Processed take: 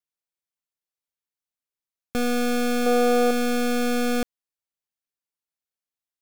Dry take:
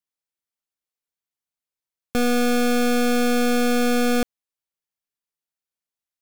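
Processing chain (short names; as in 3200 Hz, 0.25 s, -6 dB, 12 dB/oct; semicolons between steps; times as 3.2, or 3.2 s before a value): 2.86–3.31 band shelf 690 Hz +8 dB; gain -3.5 dB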